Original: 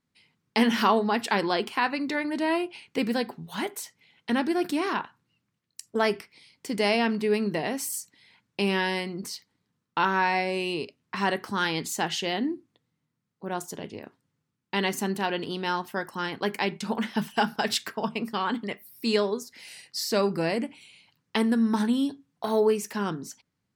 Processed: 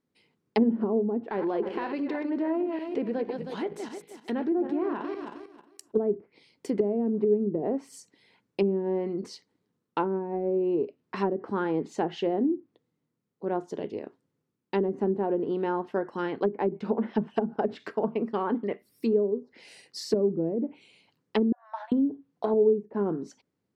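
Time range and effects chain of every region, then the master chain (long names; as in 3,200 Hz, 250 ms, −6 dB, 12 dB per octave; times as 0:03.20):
0:01.22–0:05.92: feedback delay that plays each chunk backwards 157 ms, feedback 47%, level −8.5 dB + leveller curve on the samples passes 1 + downward compressor 2 to 1, threshold −36 dBFS
0:21.52–0:21.92: linear-phase brick-wall high-pass 550 Hz + head-to-tape spacing loss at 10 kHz 34 dB
whole clip: parametric band 410 Hz +13.5 dB 1.8 octaves; treble cut that deepens with the level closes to 330 Hz, closed at −13 dBFS; level −6.5 dB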